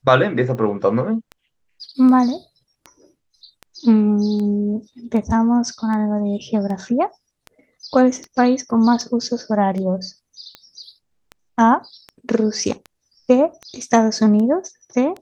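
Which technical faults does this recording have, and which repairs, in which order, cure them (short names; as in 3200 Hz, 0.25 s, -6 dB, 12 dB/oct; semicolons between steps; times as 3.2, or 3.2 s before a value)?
tick 78 rpm -19 dBFS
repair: de-click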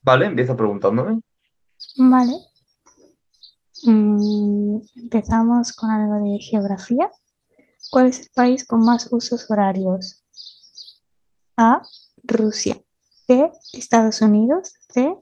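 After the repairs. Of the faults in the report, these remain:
none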